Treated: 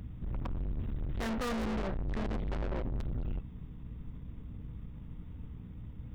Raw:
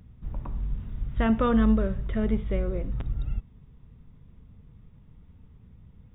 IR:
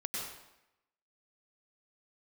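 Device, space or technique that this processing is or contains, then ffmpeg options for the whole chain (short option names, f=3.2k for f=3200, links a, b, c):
valve amplifier with mains hum: -filter_complex "[0:a]asettb=1/sr,asplit=3[a][b][c];[a]atrim=end=1.944[d];[b]atrim=start=1.94:end=2.75,asetpts=PTS-STARTPTS,afade=t=in:d=0.004:c=qsin,afade=t=out:st=0.806:d=0.004:c=qsin,lowshelf=f=120:g=6[e];[c]atrim=start=2.746[f];[d][e]acrossfade=d=0.004:c1=hsin:c2=qsin[g];[g][f]acrossfade=d=0.004:c1=qsin:c2=hsin,aeval=exprs='(tanh(100*val(0)+0.35)-tanh(0.35))/100':c=same,aeval=exprs='val(0)+0.00178*(sin(2*PI*60*n/s)+sin(2*PI*2*60*n/s)/2+sin(2*PI*3*60*n/s)/3+sin(2*PI*4*60*n/s)/4+sin(2*PI*5*60*n/s)/5)':c=same,volume=7dB"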